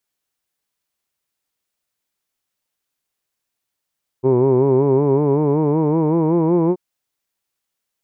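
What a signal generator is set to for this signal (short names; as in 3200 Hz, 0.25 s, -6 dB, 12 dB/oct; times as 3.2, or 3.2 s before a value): formant vowel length 2.53 s, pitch 126 Hz, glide +5.5 st, F1 390 Hz, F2 960 Hz, F3 2300 Hz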